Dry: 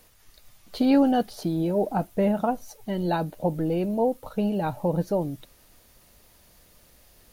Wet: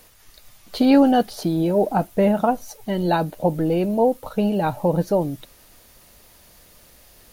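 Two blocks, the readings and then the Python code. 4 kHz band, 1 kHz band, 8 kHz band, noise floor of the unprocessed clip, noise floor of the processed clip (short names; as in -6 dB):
+6.5 dB, +6.0 dB, +6.5 dB, -57 dBFS, -52 dBFS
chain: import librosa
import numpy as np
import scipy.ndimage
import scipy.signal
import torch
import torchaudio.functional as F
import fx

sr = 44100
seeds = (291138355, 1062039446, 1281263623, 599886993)

y = fx.low_shelf(x, sr, hz=320.0, db=-3.0)
y = y * librosa.db_to_amplitude(6.5)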